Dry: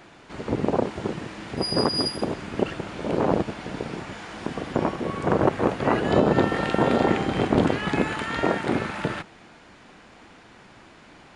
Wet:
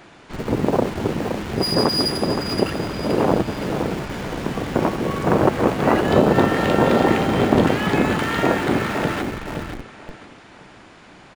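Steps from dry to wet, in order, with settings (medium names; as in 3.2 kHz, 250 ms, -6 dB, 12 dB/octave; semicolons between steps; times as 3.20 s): feedback delay 520 ms, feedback 36%, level -8 dB; in parallel at -10.5 dB: Schmitt trigger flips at -32 dBFS; on the sum: trim +3 dB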